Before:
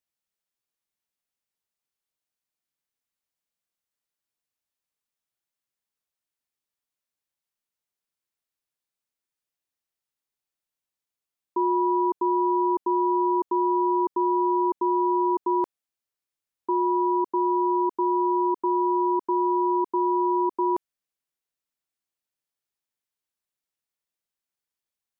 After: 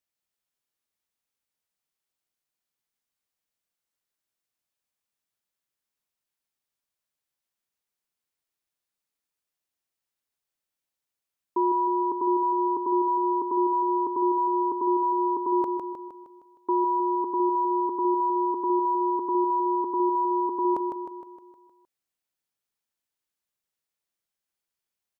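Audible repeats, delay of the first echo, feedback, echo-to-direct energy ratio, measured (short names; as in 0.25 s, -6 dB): 6, 0.155 s, 53%, -4.0 dB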